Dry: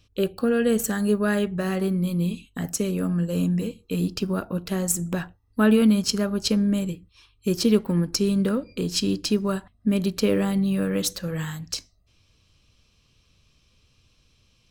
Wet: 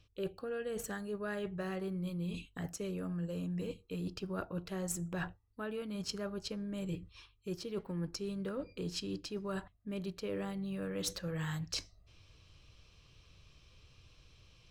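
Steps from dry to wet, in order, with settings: high shelf 6800 Hz -11.5 dB; reverse; compressor 6:1, threshold -37 dBFS, peak gain reduction 21 dB; reverse; bell 230 Hz -11.5 dB 0.35 oct; gain +2 dB

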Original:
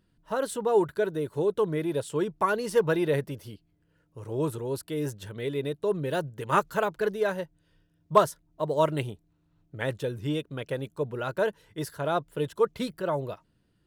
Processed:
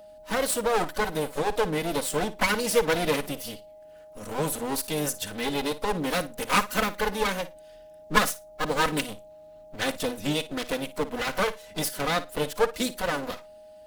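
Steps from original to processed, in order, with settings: minimum comb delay 4 ms; high shelf 2300 Hz +11.5 dB; in parallel at +2.5 dB: compressor 8:1, threshold -34 dBFS, peak gain reduction 19.5 dB; on the sum: whine 620 Hz -44 dBFS; flutter echo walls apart 9.6 m, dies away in 0.22 s; harmoniser +5 st -15 dB; gain -1.5 dB

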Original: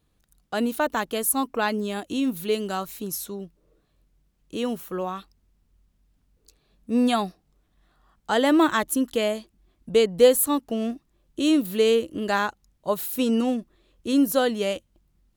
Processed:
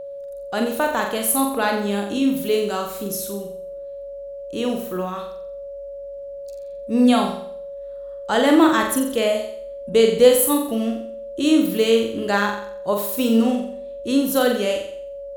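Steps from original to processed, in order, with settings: flutter echo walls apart 7.6 m, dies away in 0.6 s; whine 560 Hz -33 dBFS; gain +2 dB

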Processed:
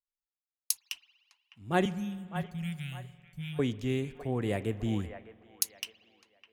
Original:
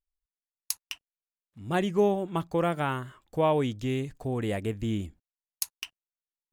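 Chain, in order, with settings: 1.85–3.59 elliptic band-stop 190–2200 Hz; on a send: band-limited delay 0.606 s, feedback 39%, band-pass 1100 Hz, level -6 dB; on the sum: spring tank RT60 3.2 s, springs 48 ms, chirp 35 ms, DRR 15.5 dB; three-band expander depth 40%; gain -2 dB

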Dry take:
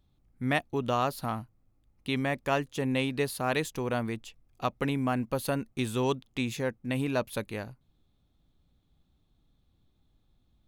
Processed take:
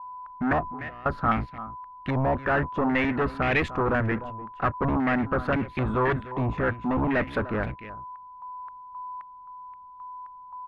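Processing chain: octaver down 1 oct, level -3 dB; spectral gate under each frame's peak -30 dB strong; sample leveller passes 3; 0.62–1.06 negative-ratio compressor -44 dBFS, ratio -1; whine 1000 Hz -47 dBFS; soft clip -23 dBFS, distortion -12 dB; on a send: echo 0.299 s -15.5 dB; on the sum: stepped low-pass 3.8 Hz 930–2200 Hz

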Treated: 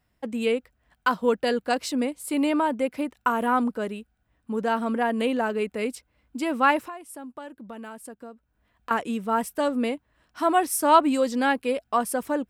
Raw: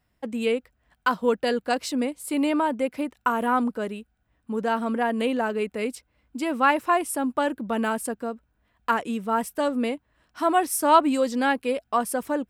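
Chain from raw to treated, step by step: 6.85–8.91 compressor 3:1, threshold -42 dBFS, peak gain reduction 18.5 dB

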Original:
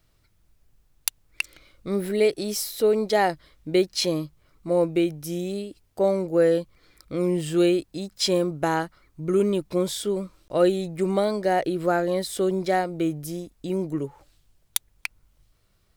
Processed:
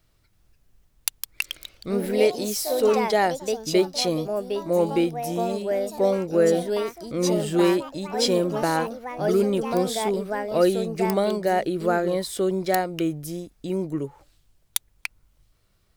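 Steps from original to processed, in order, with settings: echoes that change speed 0.33 s, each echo +3 st, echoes 3, each echo -6 dB

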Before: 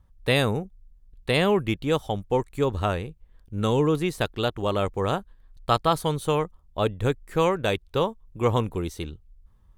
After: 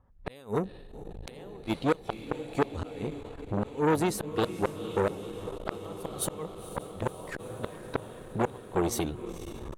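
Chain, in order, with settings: bin magnitudes rounded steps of 15 dB; recorder AGC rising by 35 dB/s; RIAA curve recording; low-pass opened by the level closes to 1600 Hz, open at -22.5 dBFS; tilt shelf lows +8 dB, about 1400 Hz; flipped gate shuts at -11 dBFS, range -30 dB; diffused feedback echo 0.491 s, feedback 71%, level -14 dB; core saturation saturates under 1700 Hz

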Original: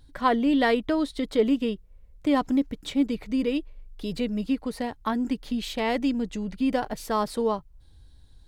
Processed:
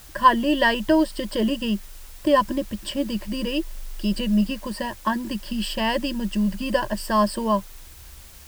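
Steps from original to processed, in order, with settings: ripple EQ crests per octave 1.3, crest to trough 18 dB; in parallel at -11.5 dB: requantised 6-bit, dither triangular

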